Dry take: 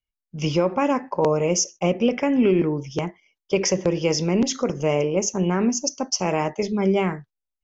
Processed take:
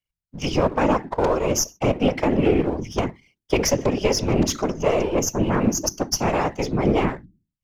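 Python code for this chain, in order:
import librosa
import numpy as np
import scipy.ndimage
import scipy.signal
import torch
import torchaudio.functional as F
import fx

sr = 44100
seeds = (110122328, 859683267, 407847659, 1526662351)

p1 = np.where(x < 0.0, 10.0 ** (-7.0 / 20.0) * x, x)
p2 = fx.hum_notches(p1, sr, base_hz=50, count=6)
p3 = fx.rider(p2, sr, range_db=4, speed_s=0.5)
p4 = p2 + (p3 * librosa.db_to_amplitude(-3.0))
p5 = fx.whisperise(p4, sr, seeds[0])
y = p5 * librosa.db_to_amplitude(-1.5)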